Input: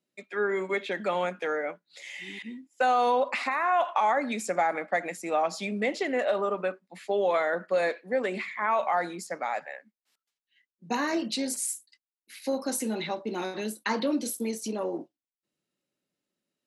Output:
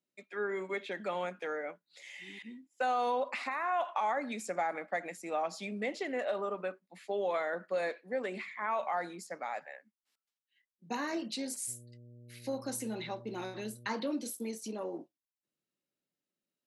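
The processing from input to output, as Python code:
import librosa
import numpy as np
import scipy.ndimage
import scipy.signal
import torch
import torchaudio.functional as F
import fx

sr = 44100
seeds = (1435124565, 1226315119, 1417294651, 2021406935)

y = fx.dmg_buzz(x, sr, base_hz=120.0, harmonics=5, level_db=-46.0, tilt_db=-8, odd_only=False, at=(11.67, 13.87), fade=0.02)
y = y * 10.0 ** (-7.5 / 20.0)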